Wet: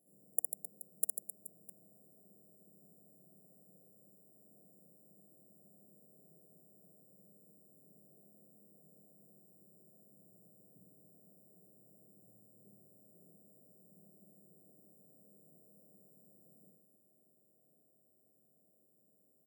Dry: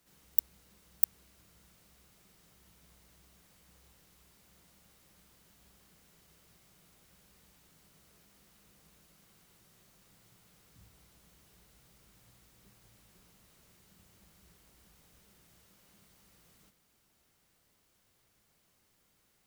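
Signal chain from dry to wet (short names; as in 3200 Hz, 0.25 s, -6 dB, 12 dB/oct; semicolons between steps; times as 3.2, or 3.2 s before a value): sample sorter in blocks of 8 samples; HPF 160 Hz 24 dB/oct; limiter -7.5 dBFS, peak gain reduction 5.5 dB; brick-wall FIR band-stop 730–7100 Hz; on a send: reverse bouncing-ball echo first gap 60 ms, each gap 1.4×, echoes 5; on the sum: gain +1.5 dB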